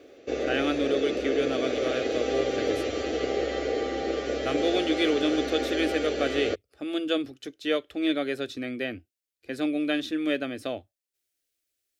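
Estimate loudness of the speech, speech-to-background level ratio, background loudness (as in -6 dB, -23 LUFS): -29.5 LUFS, 0.0 dB, -29.5 LUFS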